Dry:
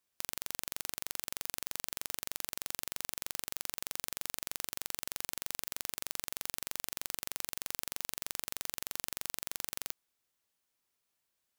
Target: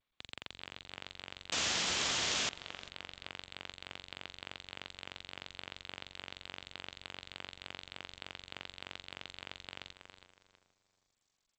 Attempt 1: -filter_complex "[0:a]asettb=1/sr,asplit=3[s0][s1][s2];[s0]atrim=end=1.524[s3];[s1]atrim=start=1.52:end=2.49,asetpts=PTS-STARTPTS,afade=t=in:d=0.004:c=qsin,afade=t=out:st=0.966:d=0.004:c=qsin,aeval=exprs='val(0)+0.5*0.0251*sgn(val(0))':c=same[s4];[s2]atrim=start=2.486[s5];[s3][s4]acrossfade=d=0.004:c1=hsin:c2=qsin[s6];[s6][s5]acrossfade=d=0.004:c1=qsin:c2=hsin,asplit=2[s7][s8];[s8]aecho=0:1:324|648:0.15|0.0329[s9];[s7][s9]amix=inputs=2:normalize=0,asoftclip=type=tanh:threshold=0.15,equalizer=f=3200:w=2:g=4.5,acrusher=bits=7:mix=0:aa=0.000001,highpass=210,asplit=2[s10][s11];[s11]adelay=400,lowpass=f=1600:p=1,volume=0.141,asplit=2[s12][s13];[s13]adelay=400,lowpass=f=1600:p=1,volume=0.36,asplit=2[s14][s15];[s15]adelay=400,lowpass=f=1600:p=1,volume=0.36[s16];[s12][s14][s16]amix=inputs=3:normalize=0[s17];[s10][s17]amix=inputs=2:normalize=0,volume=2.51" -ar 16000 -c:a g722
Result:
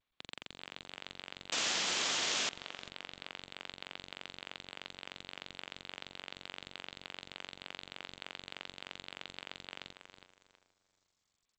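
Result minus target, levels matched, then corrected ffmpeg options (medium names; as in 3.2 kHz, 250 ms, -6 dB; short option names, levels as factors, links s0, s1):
125 Hz band -4.5 dB
-filter_complex "[0:a]asettb=1/sr,asplit=3[s0][s1][s2];[s0]atrim=end=1.524[s3];[s1]atrim=start=1.52:end=2.49,asetpts=PTS-STARTPTS,afade=t=in:d=0.004:c=qsin,afade=t=out:st=0.966:d=0.004:c=qsin,aeval=exprs='val(0)+0.5*0.0251*sgn(val(0))':c=same[s4];[s2]atrim=start=2.486[s5];[s3][s4]acrossfade=d=0.004:c1=hsin:c2=qsin[s6];[s6][s5]acrossfade=d=0.004:c1=qsin:c2=hsin,asplit=2[s7][s8];[s8]aecho=0:1:324|648:0.15|0.0329[s9];[s7][s9]amix=inputs=2:normalize=0,asoftclip=type=tanh:threshold=0.15,equalizer=f=3200:w=2:g=4.5,acrusher=bits=7:mix=0:aa=0.000001,highpass=67,asplit=2[s10][s11];[s11]adelay=400,lowpass=f=1600:p=1,volume=0.141,asplit=2[s12][s13];[s13]adelay=400,lowpass=f=1600:p=1,volume=0.36,asplit=2[s14][s15];[s15]adelay=400,lowpass=f=1600:p=1,volume=0.36[s16];[s12][s14][s16]amix=inputs=3:normalize=0[s17];[s10][s17]amix=inputs=2:normalize=0,volume=2.51" -ar 16000 -c:a g722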